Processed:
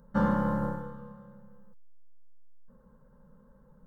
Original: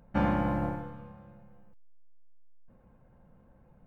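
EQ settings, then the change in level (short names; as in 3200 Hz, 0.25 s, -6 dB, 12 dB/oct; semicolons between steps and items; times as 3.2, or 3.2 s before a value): fixed phaser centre 480 Hz, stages 8; +3.5 dB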